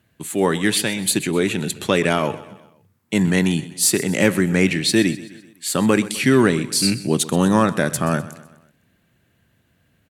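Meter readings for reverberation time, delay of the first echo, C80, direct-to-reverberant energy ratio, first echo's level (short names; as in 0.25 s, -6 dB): none, 0.127 s, none, none, -17.0 dB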